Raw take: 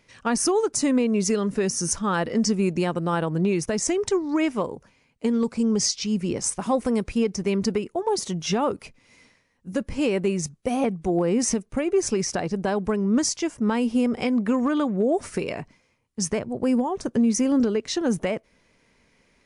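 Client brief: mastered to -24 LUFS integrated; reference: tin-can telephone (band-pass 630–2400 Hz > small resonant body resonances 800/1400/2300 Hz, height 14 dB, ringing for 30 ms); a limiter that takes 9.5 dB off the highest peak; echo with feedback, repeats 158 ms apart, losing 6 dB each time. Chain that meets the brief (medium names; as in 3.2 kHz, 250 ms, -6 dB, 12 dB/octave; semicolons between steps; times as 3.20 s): peak limiter -21.5 dBFS; band-pass 630–2400 Hz; feedback delay 158 ms, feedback 50%, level -6 dB; small resonant body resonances 800/1400/2300 Hz, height 14 dB, ringing for 30 ms; trim +9.5 dB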